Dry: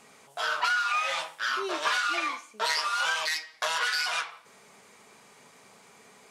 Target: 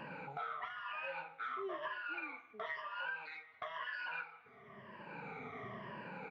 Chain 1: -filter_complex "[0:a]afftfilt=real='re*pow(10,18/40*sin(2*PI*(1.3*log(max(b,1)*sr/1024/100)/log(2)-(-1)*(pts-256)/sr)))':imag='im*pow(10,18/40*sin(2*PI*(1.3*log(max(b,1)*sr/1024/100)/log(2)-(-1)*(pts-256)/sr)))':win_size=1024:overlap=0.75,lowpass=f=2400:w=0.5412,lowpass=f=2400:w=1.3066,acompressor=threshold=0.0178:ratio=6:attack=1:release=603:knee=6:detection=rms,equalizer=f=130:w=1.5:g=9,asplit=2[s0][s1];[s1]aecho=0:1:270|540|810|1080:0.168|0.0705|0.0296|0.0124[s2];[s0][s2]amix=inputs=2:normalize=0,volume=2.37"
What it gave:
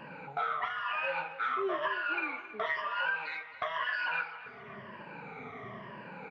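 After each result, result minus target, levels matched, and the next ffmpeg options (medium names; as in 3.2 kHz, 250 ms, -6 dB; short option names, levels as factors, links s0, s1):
compression: peak gain reduction -9.5 dB; echo-to-direct +11 dB
-filter_complex "[0:a]afftfilt=real='re*pow(10,18/40*sin(2*PI*(1.3*log(max(b,1)*sr/1024/100)/log(2)-(-1)*(pts-256)/sr)))':imag='im*pow(10,18/40*sin(2*PI*(1.3*log(max(b,1)*sr/1024/100)/log(2)-(-1)*(pts-256)/sr)))':win_size=1024:overlap=0.75,lowpass=f=2400:w=0.5412,lowpass=f=2400:w=1.3066,acompressor=threshold=0.00473:ratio=6:attack=1:release=603:knee=6:detection=rms,equalizer=f=130:w=1.5:g=9,asplit=2[s0][s1];[s1]aecho=0:1:270|540|810|1080:0.168|0.0705|0.0296|0.0124[s2];[s0][s2]amix=inputs=2:normalize=0,volume=2.37"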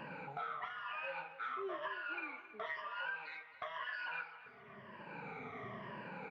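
echo-to-direct +11 dB
-filter_complex "[0:a]afftfilt=real='re*pow(10,18/40*sin(2*PI*(1.3*log(max(b,1)*sr/1024/100)/log(2)-(-1)*(pts-256)/sr)))':imag='im*pow(10,18/40*sin(2*PI*(1.3*log(max(b,1)*sr/1024/100)/log(2)-(-1)*(pts-256)/sr)))':win_size=1024:overlap=0.75,lowpass=f=2400:w=0.5412,lowpass=f=2400:w=1.3066,acompressor=threshold=0.00473:ratio=6:attack=1:release=603:knee=6:detection=rms,equalizer=f=130:w=1.5:g=9,asplit=2[s0][s1];[s1]aecho=0:1:270|540:0.0473|0.0199[s2];[s0][s2]amix=inputs=2:normalize=0,volume=2.37"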